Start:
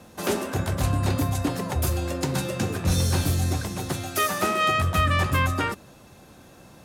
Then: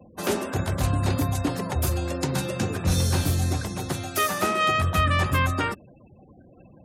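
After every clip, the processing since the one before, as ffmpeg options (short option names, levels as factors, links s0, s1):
-af "afftfilt=real='re*gte(hypot(re,im),0.00794)':imag='im*gte(hypot(re,im),0.00794)':win_size=1024:overlap=0.75"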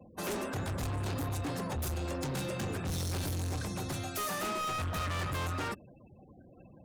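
-af "volume=25.1,asoftclip=hard,volume=0.0398,volume=0.596"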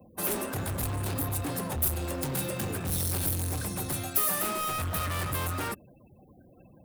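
-filter_complex "[0:a]aexciter=amount=4:drive=6.8:freq=8900,asplit=2[s0][s1];[s1]acrusher=bits=5:mix=0:aa=0.000001,volume=0.266[s2];[s0][s2]amix=inputs=2:normalize=0"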